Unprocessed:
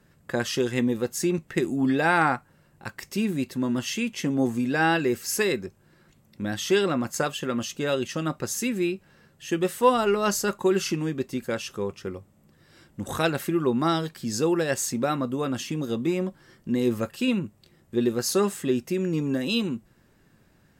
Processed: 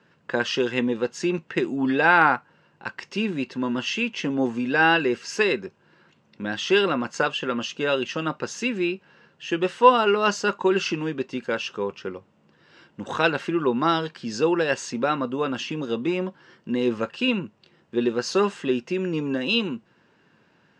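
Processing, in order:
loudspeaker in its box 160–5,800 Hz, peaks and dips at 460 Hz +4 dB, 960 Hz +7 dB, 1,500 Hz +6 dB, 2,800 Hz +8 dB

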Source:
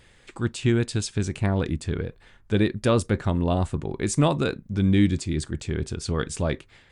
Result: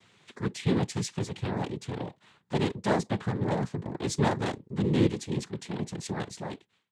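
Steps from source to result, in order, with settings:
fade-out on the ending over 0.86 s
cochlear-implant simulation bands 6
level −4.5 dB

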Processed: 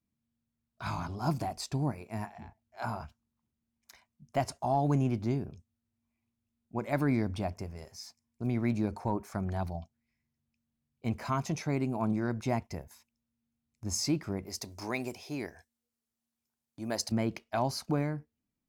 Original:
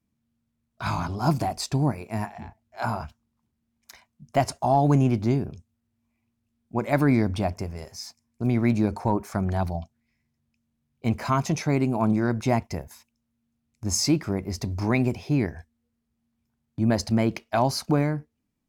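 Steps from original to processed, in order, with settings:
0:14.46–0:17.12: bass and treble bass −13 dB, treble +9 dB
level −8 dB

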